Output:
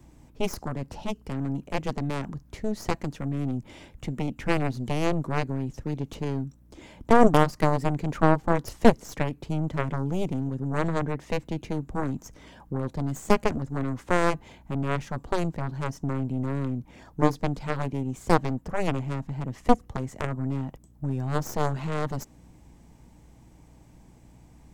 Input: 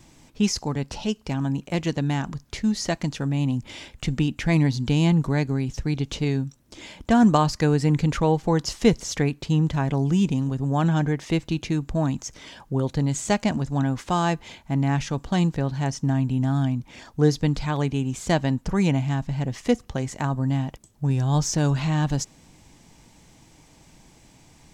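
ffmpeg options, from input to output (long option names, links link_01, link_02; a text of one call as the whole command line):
ffmpeg -i in.wav -filter_complex "[0:a]aeval=exprs='val(0)+0.00224*(sin(2*PI*60*n/s)+sin(2*PI*2*60*n/s)/2+sin(2*PI*3*60*n/s)/3+sin(2*PI*4*60*n/s)/4+sin(2*PI*5*60*n/s)/5)':channel_layout=same,acrossover=split=160|2500[link_01][link_02][link_03];[link_01]acompressor=threshold=-36dB:ratio=6[link_04];[link_04][link_02][link_03]amix=inputs=3:normalize=0,aeval=exprs='0.596*(cos(1*acos(clip(val(0)/0.596,-1,1)))-cos(1*PI/2))+0.211*(cos(4*acos(clip(val(0)/0.596,-1,1)))-cos(4*PI/2))+0.168*(cos(7*acos(clip(val(0)/0.596,-1,1)))-cos(7*PI/2))':channel_layout=same,equalizer=frequency=4500:width=0.42:gain=-12,volume=-1dB" out.wav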